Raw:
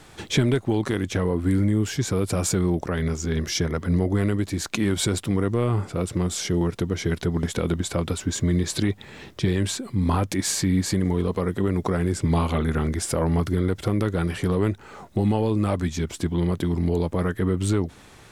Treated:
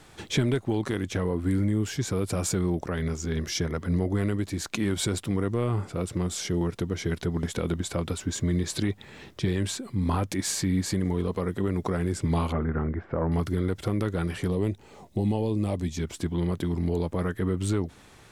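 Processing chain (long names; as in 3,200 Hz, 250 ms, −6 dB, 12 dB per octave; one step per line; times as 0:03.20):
0:12.52–0:13.32: low-pass filter 1,800 Hz 24 dB per octave
0:14.48–0:15.97: parametric band 1,400 Hz −14 dB 0.7 octaves
level −4 dB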